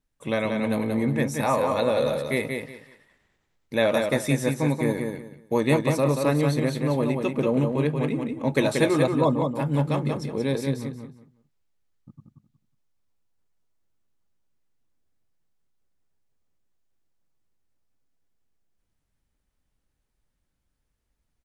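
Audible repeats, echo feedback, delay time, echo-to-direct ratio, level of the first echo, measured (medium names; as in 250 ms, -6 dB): 3, 23%, 182 ms, -5.0 dB, -5.0 dB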